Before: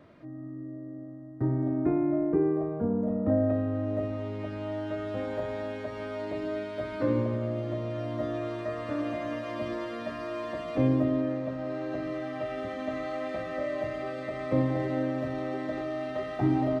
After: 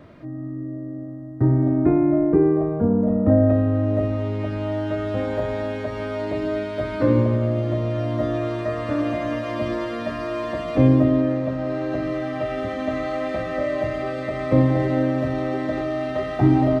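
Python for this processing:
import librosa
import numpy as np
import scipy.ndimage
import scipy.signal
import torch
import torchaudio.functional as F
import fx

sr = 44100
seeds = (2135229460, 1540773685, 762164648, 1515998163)

y = fx.low_shelf(x, sr, hz=110.0, db=8.0)
y = y * 10.0 ** (7.5 / 20.0)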